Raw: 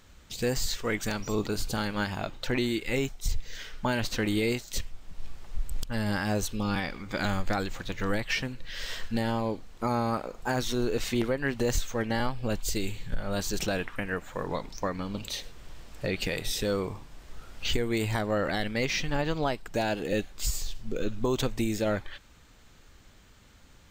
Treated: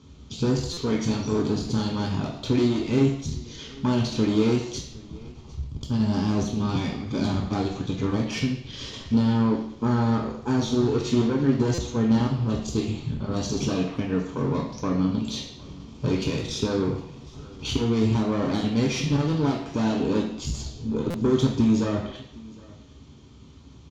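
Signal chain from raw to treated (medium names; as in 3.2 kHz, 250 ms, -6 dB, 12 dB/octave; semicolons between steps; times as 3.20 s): low-pass 3.7 kHz 12 dB/octave; peaking EQ 1.6 kHz -14.5 dB 0.74 oct; valve stage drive 30 dB, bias 0.5; delay 761 ms -23 dB; reverberation RT60 0.70 s, pre-delay 3 ms, DRR -1 dB; buffer glitch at 0.73/11.74/21.10 s, samples 256, times 6; trim +1.5 dB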